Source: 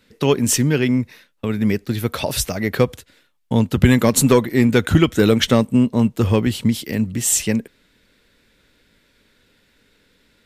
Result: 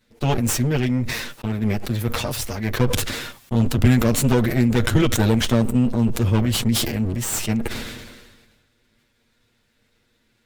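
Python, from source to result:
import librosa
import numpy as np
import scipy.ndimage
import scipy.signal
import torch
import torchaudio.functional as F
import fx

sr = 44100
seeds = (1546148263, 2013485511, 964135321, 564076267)

y = fx.lower_of_two(x, sr, delay_ms=8.5)
y = fx.low_shelf(y, sr, hz=180.0, db=6.5)
y = fx.sustainer(y, sr, db_per_s=40.0)
y = y * librosa.db_to_amplitude(-6.5)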